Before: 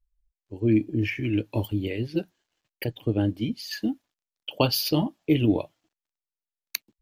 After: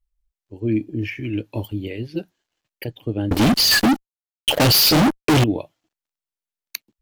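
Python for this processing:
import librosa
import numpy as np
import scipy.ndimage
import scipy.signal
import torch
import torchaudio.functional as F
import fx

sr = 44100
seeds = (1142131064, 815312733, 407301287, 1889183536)

y = fx.fuzz(x, sr, gain_db=43.0, gate_db=-51.0, at=(3.31, 5.44))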